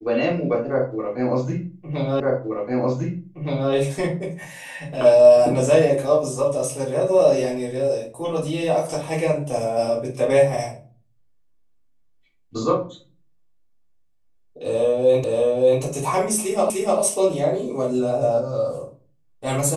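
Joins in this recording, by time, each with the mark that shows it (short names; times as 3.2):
2.2 repeat of the last 1.52 s
15.24 repeat of the last 0.58 s
16.7 repeat of the last 0.3 s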